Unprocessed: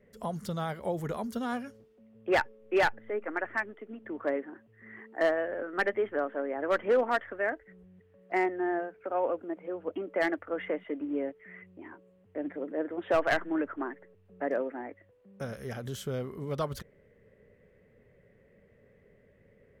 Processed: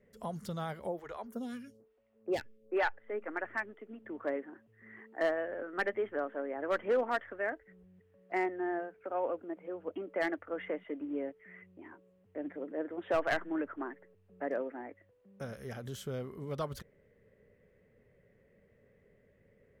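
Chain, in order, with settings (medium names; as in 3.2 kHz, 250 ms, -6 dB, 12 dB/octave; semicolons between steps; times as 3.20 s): 0.87–3.10 s: lamp-driven phase shifter 1.1 Hz; trim -4.5 dB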